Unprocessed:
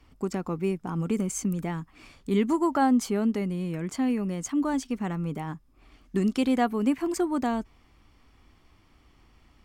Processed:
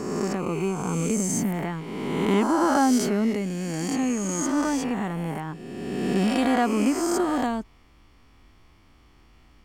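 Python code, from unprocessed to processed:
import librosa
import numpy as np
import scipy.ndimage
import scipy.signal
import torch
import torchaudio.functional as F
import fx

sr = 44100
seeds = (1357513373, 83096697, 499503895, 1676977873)

y = fx.spec_swells(x, sr, rise_s=1.89)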